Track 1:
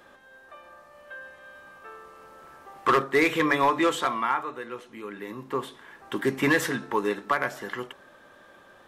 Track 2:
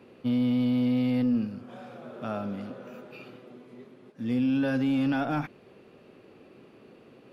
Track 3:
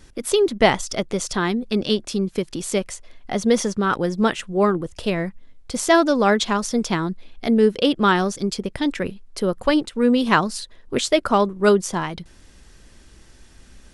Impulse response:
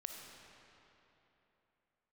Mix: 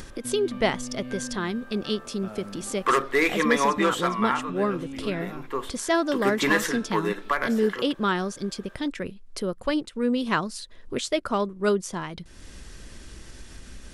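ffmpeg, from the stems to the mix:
-filter_complex "[0:a]highpass=frequency=240:poles=1,volume=0.5dB[link_01];[1:a]acompressor=threshold=-29dB:ratio=6,volume=-6dB[link_02];[2:a]acompressor=mode=upward:threshold=-22dB:ratio=2.5,volume=-7dB[link_03];[link_01][link_02][link_03]amix=inputs=3:normalize=0,equalizer=frequency=810:width_type=o:width=0.37:gain=-3.5"

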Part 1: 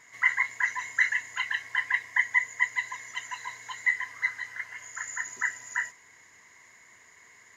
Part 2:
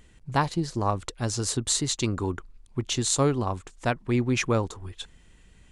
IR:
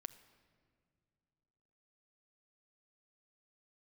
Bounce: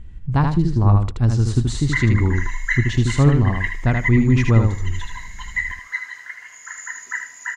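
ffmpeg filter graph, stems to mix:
-filter_complex "[0:a]highpass=110,lowshelf=frequency=150:gain=-10,adelay=1700,volume=2dB,asplit=2[link_01][link_02];[link_02]volume=-8dB[link_03];[1:a]aemphasis=mode=reproduction:type=riaa,volume=1.5dB,asplit=3[link_04][link_05][link_06];[link_05]volume=-4.5dB[link_07];[link_06]apad=whole_len=408493[link_08];[link_01][link_08]sidechaincompress=threshold=-24dB:ratio=8:attack=16:release=107[link_09];[link_03][link_07]amix=inputs=2:normalize=0,aecho=0:1:78|156|234:1|0.17|0.0289[link_10];[link_09][link_04][link_10]amix=inputs=3:normalize=0,equalizer=frequency=510:width_type=o:width=1.1:gain=-5.5"

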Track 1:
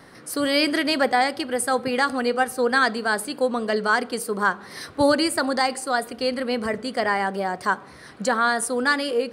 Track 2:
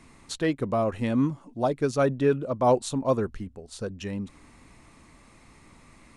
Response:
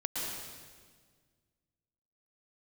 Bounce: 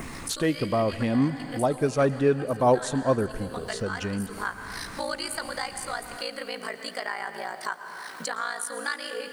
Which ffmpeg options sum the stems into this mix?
-filter_complex "[0:a]aeval=exprs='val(0)*sin(2*PI*28*n/s)':channel_layout=same,acrusher=bits=9:mix=0:aa=0.000001,highpass=frequency=1300:poles=1,volume=-7dB,asplit=2[link_01][link_02];[link_02]volume=-13dB[link_03];[1:a]volume=0dB,asplit=3[link_04][link_05][link_06];[link_05]volume=-20dB[link_07];[link_06]apad=whole_len=411436[link_08];[link_01][link_08]sidechaincompress=threshold=-33dB:ratio=8:attack=6.4:release=390[link_09];[2:a]atrim=start_sample=2205[link_10];[link_03][link_07]amix=inputs=2:normalize=0[link_11];[link_11][link_10]afir=irnorm=-1:irlink=0[link_12];[link_09][link_04][link_12]amix=inputs=3:normalize=0,adynamicequalizer=threshold=0.00224:dfrequency=4200:dqfactor=2.9:tfrequency=4200:tqfactor=2.9:attack=5:release=100:ratio=0.375:range=2:mode=cutabove:tftype=bell,acompressor=mode=upward:threshold=-25dB:ratio=2.5"

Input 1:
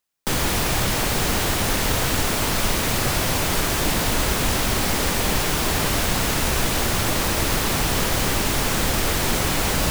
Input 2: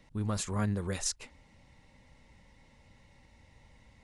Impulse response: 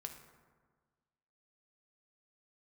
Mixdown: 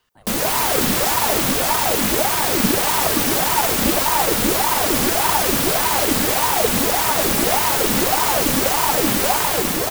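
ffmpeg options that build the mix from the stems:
-filter_complex "[0:a]highshelf=frequency=9900:gain=8.5,aecho=1:1:3.5:0.65,volume=-1dB[link_01];[1:a]highpass=560,volume=1.5dB[link_02];[link_01][link_02]amix=inputs=2:normalize=0,dynaudnorm=framelen=110:gausssize=9:maxgain=6dB,aeval=exprs='val(0)*sin(2*PI*590*n/s+590*0.65/1.7*sin(2*PI*1.7*n/s))':channel_layout=same"

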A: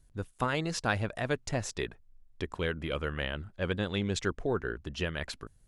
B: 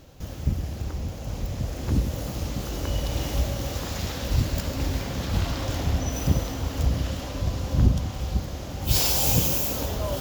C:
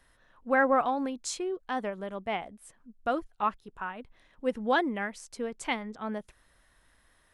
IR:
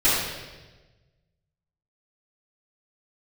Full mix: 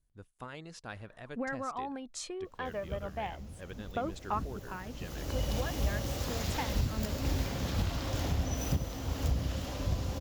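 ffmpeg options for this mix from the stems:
-filter_complex "[0:a]volume=-14.5dB[link_01];[1:a]adelay=2450,volume=-4.5dB,afade=type=in:start_time=4.9:duration=0.67:silence=0.251189[link_02];[2:a]highshelf=frequency=4200:gain=-7,acompressor=threshold=-33dB:ratio=5,aphaser=in_gain=1:out_gain=1:delay=1.8:decay=0.46:speed=0.3:type=sinusoidal,adelay=900,volume=-2dB[link_03];[link_01][link_02][link_03]amix=inputs=3:normalize=0,alimiter=limit=-20.5dB:level=0:latency=1:release=456"

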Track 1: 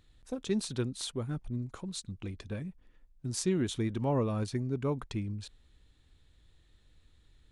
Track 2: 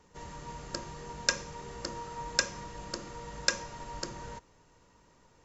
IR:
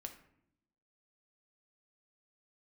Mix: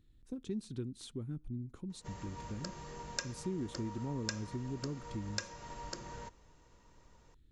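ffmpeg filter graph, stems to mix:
-filter_complex "[0:a]lowshelf=frequency=450:width_type=q:width=1.5:gain=9,volume=-12dB,asplit=2[link_01][link_02];[link_02]volume=-20dB[link_03];[1:a]adelay=1900,volume=-3dB[link_04];[2:a]atrim=start_sample=2205[link_05];[link_03][link_05]afir=irnorm=-1:irlink=0[link_06];[link_01][link_04][link_06]amix=inputs=3:normalize=0,acompressor=threshold=-40dB:ratio=2"

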